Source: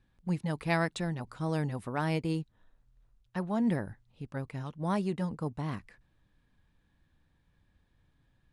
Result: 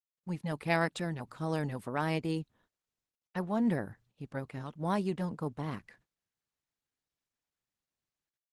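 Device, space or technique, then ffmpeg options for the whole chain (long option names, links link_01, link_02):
video call: -af "highpass=frequency=150:poles=1,dynaudnorm=framelen=140:gausssize=5:maxgain=8dB,agate=range=-26dB:threshold=-57dB:ratio=16:detection=peak,volume=-7dB" -ar 48000 -c:a libopus -b:a 16k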